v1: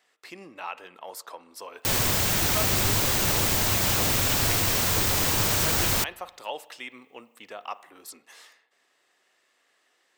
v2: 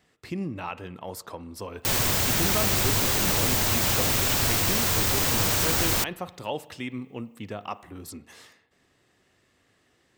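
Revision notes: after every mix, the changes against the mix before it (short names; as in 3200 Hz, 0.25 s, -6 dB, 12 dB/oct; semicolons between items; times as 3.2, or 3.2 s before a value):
speech: remove HPF 610 Hz 12 dB/oct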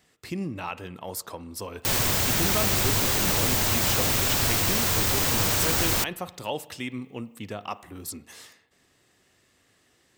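speech: add high shelf 4600 Hz +8.5 dB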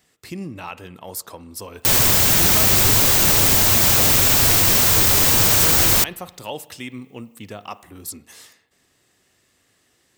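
background +5.5 dB; master: add high shelf 5900 Hz +5.5 dB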